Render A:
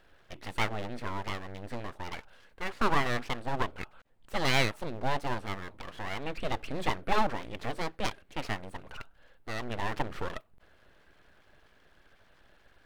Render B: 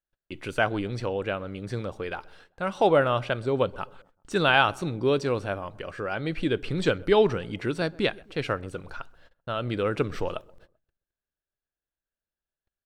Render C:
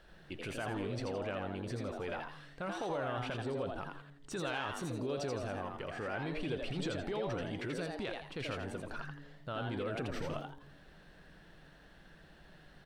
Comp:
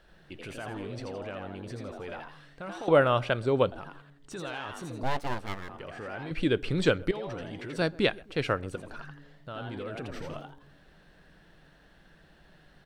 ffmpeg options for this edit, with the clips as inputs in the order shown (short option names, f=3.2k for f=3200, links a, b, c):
-filter_complex "[1:a]asplit=3[a][b][c];[2:a]asplit=5[d][e][f][g][h];[d]atrim=end=2.882[i];[a]atrim=start=2.878:end=3.722[j];[e]atrim=start=3.718:end=5.032[k];[0:a]atrim=start=5.028:end=5.692[l];[f]atrim=start=5.688:end=6.312[m];[b]atrim=start=6.308:end=7.112[n];[g]atrim=start=7.108:end=7.762[o];[c]atrim=start=7.758:end=8.762[p];[h]atrim=start=8.758[q];[i][j]acrossfade=d=0.004:c1=hsin:c2=hsin[r];[r][k]acrossfade=d=0.004:c1=hsin:c2=hsin[s];[s][l]acrossfade=d=0.004:c1=hsin:c2=hsin[t];[t][m]acrossfade=d=0.004:c1=hsin:c2=hsin[u];[u][n]acrossfade=d=0.004:c1=hsin:c2=hsin[v];[v][o]acrossfade=d=0.004:c1=hsin:c2=hsin[w];[w][p]acrossfade=d=0.004:c1=hsin:c2=hsin[x];[x][q]acrossfade=d=0.004:c1=hsin:c2=hsin"